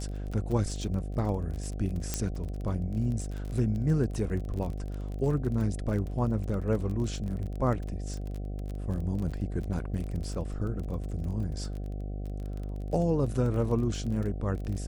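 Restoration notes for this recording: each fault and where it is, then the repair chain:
mains buzz 50 Hz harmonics 15 −35 dBFS
surface crackle 26 per second −35 dBFS
0:02.14: click −13 dBFS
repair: click removal
hum removal 50 Hz, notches 15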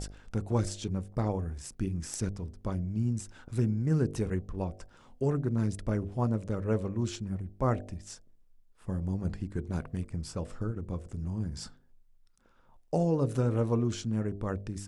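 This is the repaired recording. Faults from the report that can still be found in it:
0:02.14: click

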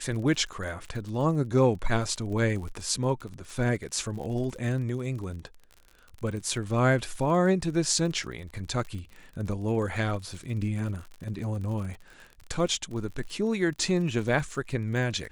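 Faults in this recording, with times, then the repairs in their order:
surface crackle 50 per second −36 dBFS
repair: click removal

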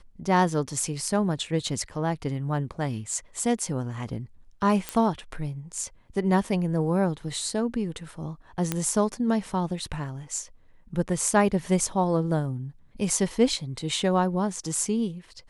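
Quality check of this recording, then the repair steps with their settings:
0:04.89: click −12 dBFS
0:08.72: click −10 dBFS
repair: click removal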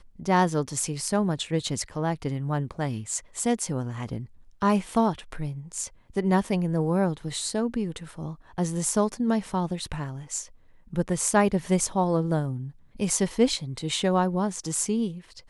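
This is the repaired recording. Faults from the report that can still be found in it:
none of them is left

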